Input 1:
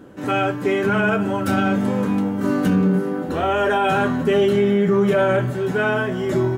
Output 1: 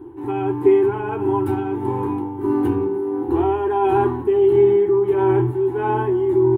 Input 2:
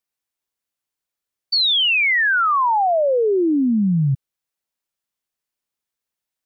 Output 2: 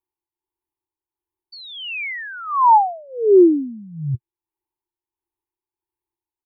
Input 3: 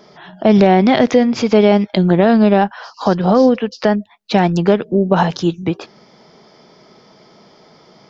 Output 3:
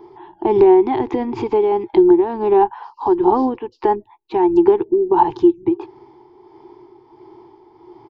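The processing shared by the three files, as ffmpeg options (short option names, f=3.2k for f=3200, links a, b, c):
-af "firequalizer=gain_entry='entry(120,0);entry(180,-27);entry(350,11);entry(560,-27);entry(870,6);entry(1300,-16);entry(2300,-14);entry(5900,-28);entry(10000,-12)':delay=0.05:min_phase=1,acompressor=threshold=-12dB:ratio=6,tremolo=f=1.5:d=0.46,volume=5dB"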